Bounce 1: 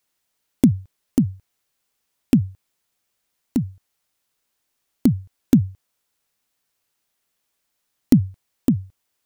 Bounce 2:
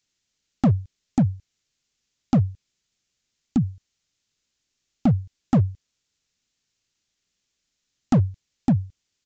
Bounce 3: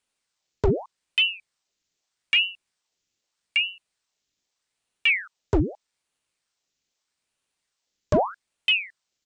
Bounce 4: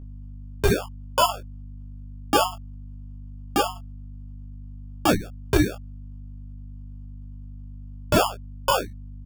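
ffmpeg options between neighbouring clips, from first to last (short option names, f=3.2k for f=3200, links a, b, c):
-af "equalizer=f=860:t=o:w=2.4:g=-14,aresample=16000,volume=18dB,asoftclip=hard,volume=-18dB,aresample=44100,volume=4.5dB"
-af "aeval=exprs='val(0)*sin(2*PI*1500*n/s+1500*0.9/0.81*sin(2*PI*0.81*n/s))':c=same"
-af "acrusher=samples=22:mix=1:aa=0.000001,aeval=exprs='val(0)+0.0126*(sin(2*PI*50*n/s)+sin(2*PI*2*50*n/s)/2+sin(2*PI*3*50*n/s)/3+sin(2*PI*4*50*n/s)/4+sin(2*PI*5*50*n/s)/5)':c=same,aecho=1:1:17|27:0.531|0.398"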